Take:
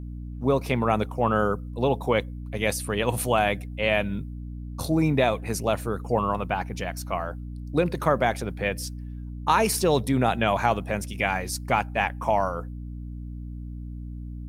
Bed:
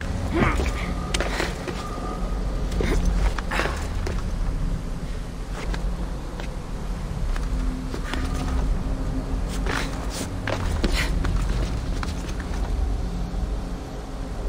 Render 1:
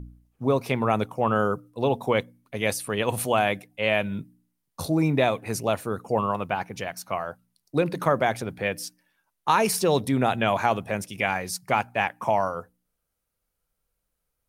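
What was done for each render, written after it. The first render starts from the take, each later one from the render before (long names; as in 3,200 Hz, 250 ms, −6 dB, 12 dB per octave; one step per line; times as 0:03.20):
hum removal 60 Hz, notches 5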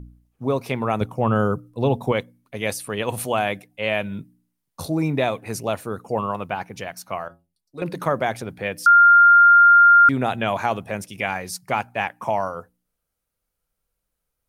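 0:01.01–0:02.12: low-shelf EQ 230 Hz +10.5 dB
0:07.28–0:07.82: stiff-string resonator 83 Hz, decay 0.37 s, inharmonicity 0.008
0:08.86–0:10.09: beep over 1,400 Hz −8 dBFS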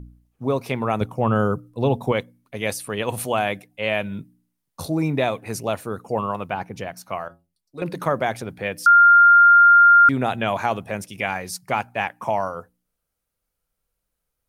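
0:06.54–0:07.03: tilt shelving filter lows +3.5 dB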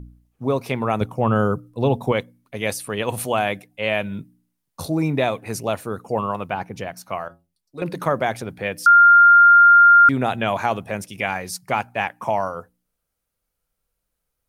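level +1 dB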